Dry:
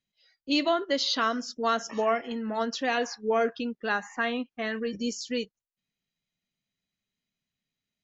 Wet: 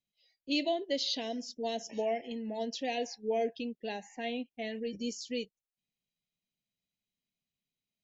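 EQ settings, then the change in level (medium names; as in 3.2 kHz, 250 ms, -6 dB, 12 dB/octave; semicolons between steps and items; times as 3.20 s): Chebyshev band-stop 710–2300 Hz, order 2; -5.0 dB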